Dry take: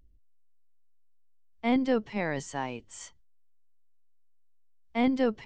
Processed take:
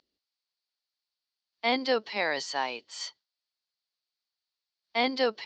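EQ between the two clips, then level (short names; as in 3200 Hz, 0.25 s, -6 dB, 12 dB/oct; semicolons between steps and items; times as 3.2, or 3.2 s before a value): HPF 510 Hz 12 dB/oct; synth low-pass 4500 Hz, resonance Q 5.9; +4.0 dB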